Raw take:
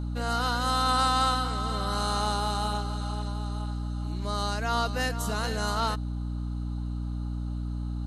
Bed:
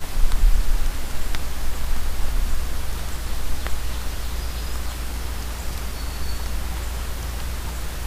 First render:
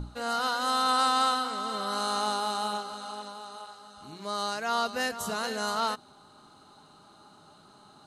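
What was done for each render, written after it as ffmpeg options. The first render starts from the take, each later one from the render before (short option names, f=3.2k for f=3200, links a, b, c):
-af "bandreject=f=60:t=h:w=6,bandreject=f=120:t=h:w=6,bandreject=f=180:t=h:w=6,bandreject=f=240:t=h:w=6,bandreject=f=300:t=h:w=6,bandreject=f=360:t=h:w=6"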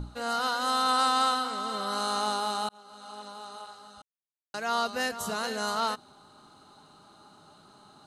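-filter_complex "[0:a]asplit=4[a][b][c][d];[a]atrim=end=2.69,asetpts=PTS-STARTPTS,afade=t=out:st=2.686:d=0.004:c=hsin[e];[b]atrim=start=2.69:end=4.02,asetpts=PTS-STARTPTS,afade=t=in:d=0.74,afade=t=out:st=1.326:d=0.004:c=hsin[f];[c]atrim=start=4.02:end=4.54,asetpts=PTS-STARTPTS,volume=0[g];[d]atrim=start=4.54,asetpts=PTS-STARTPTS,afade=t=in:d=0.004:c=hsin[h];[e][f][g][h]concat=n=4:v=0:a=1"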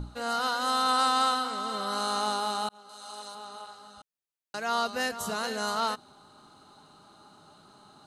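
-filter_complex "[0:a]asettb=1/sr,asplit=3[a][b][c];[a]atrim=end=2.894[d];[b]atrim=start=2.89:end=3.35,asetpts=PTS-STARTPTS,afade=t=in:d=0.004:c=qsin,afade=t=out:st=0.456:d=0.004:c=qsin,bass=f=250:g=-10,treble=f=4k:g=9[e];[c]atrim=start=3.346[f];[d][e]acrossfade=d=0.004:c1=hsin:c2=qsin[g];[g][f]acrossfade=d=0.004:c1=qsin:c2=hsin"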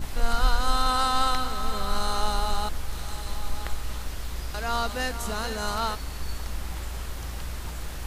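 -filter_complex "[1:a]volume=-6dB[a];[0:a][a]amix=inputs=2:normalize=0"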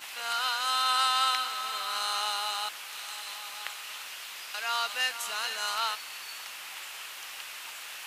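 -af "highpass=1.1k,equalizer=f=2.7k:t=o:w=0.62:g=8"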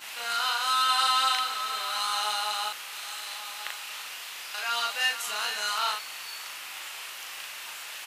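-filter_complex "[0:a]asplit=2[a][b];[b]adelay=38,volume=-2dB[c];[a][c]amix=inputs=2:normalize=0"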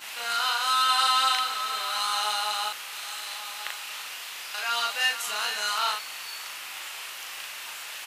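-af "volume=1.5dB"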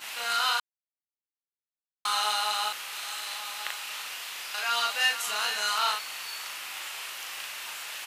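-filter_complex "[0:a]asplit=3[a][b][c];[a]atrim=end=0.6,asetpts=PTS-STARTPTS,afade=t=out:st=0.596:d=0.004:c=hsin[d];[b]atrim=start=0.6:end=2.05,asetpts=PTS-STARTPTS,volume=0[e];[c]atrim=start=2.05,asetpts=PTS-STARTPTS,afade=t=in:d=0.004:c=hsin[f];[d][e][f]concat=n=3:v=0:a=1"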